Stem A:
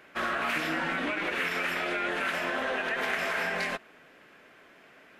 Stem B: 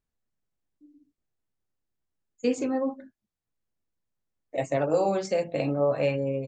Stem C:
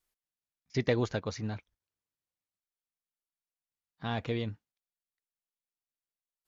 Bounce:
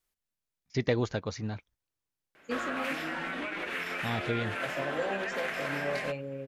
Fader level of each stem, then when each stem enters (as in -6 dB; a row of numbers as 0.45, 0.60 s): -5.0, -10.5, +0.5 dB; 2.35, 0.05, 0.00 s